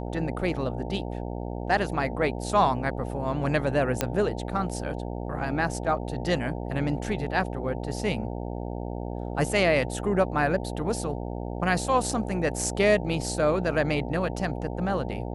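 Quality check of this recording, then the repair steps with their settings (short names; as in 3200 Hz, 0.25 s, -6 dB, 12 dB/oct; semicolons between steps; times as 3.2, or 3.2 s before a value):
buzz 60 Hz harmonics 15 -33 dBFS
4.01 pop -7 dBFS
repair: de-click; de-hum 60 Hz, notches 15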